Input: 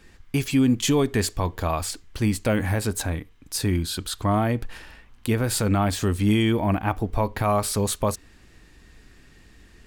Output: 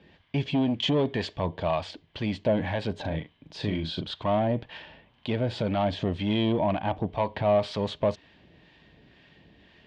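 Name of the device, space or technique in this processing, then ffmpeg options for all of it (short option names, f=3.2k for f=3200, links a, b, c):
guitar amplifier with harmonic tremolo: -filter_complex "[0:a]acrossover=split=700[a][b];[a]aeval=exprs='val(0)*(1-0.5/2+0.5/2*cos(2*PI*2*n/s))':c=same[c];[b]aeval=exprs='val(0)*(1-0.5/2-0.5/2*cos(2*PI*2*n/s))':c=same[d];[c][d]amix=inputs=2:normalize=0,asoftclip=type=tanh:threshold=-21dB,highpass=100,equalizer=f=160:t=q:w=4:g=6,equalizer=f=610:t=q:w=4:g=9,equalizer=f=920:t=q:w=4:g=4,equalizer=f=1.3k:t=q:w=4:g=-8,equalizer=f=3.2k:t=q:w=4:g=7,lowpass=f=4k:w=0.5412,lowpass=f=4k:w=1.3066,asettb=1/sr,asplit=3[e][f][g];[e]atrim=end=3.014[h];[f]atrim=start=3.01:end=4.13,asetpts=PTS-STARTPTS,afade=t=in:d=0.004:c=qsin,afade=t=out:st=1.116:d=0.004:c=qsin,asplit=2[i][j];[j]adelay=38,volume=-6dB[k];[i][k]amix=inputs=2:normalize=0,atrim=end_sample=49392[l];[g]atrim=start=4.126[m];[h][l]acrossfade=d=0.004:c1=hsin:c2=qsin[n];[n][m]acrossfade=d=0.004:c1=qsin:c2=hsin"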